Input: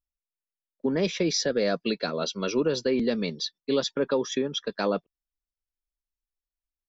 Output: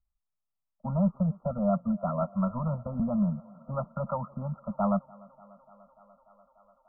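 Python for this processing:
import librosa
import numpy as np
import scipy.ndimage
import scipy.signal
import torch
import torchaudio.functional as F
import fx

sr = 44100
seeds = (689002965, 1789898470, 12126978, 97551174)

p1 = scipy.signal.sosfilt(scipy.signal.ellip(3, 1.0, 40, [210.0, 620.0], 'bandstop', fs=sr, output='sos'), x)
p2 = fx.low_shelf(p1, sr, hz=240.0, db=7.5)
p3 = np.clip(p2, -10.0 ** (-31.5 / 20.0), 10.0 ** (-31.5 / 20.0))
p4 = p2 + (p3 * librosa.db_to_amplitude(-4.0))
p5 = fx.brickwall_lowpass(p4, sr, high_hz=1400.0)
y = fx.echo_thinned(p5, sr, ms=294, feedback_pct=84, hz=190.0, wet_db=-23.5)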